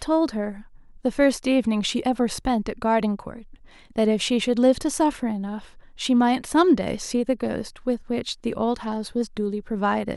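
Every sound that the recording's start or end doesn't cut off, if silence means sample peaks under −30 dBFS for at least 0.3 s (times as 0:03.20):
0:01.05–0:03.38
0:03.96–0:05.59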